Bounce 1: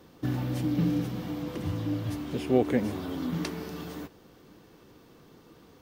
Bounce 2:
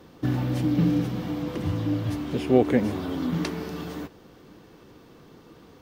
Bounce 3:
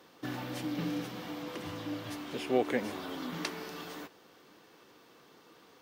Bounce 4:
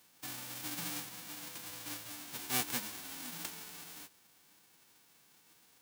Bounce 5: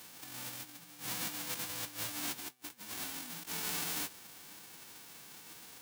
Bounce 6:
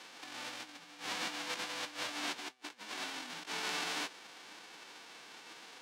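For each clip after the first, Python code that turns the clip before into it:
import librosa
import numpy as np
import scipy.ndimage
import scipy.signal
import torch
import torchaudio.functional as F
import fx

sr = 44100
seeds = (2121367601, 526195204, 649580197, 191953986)

y1 = fx.high_shelf(x, sr, hz=6700.0, db=-6.0)
y1 = F.gain(torch.from_numpy(y1), 4.5).numpy()
y2 = fx.highpass(y1, sr, hz=880.0, slope=6)
y2 = F.gain(torch.from_numpy(y2), -1.5).numpy()
y3 = fx.envelope_flatten(y2, sr, power=0.1)
y3 = F.gain(torch.from_numpy(y3), -6.0).numpy()
y4 = fx.over_compress(y3, sr, threshold_db=-49.0, ratio=-0.5)
y4 = F.gain(torch.from_numpy(y4), 7.0).numpy()
y5 = fx.bandpass_edges(y4, sr, low_hz=340.0, high_hz=4400.0)
y5 = F.gain(torch.from_numpy(y5), 5.0).numpy()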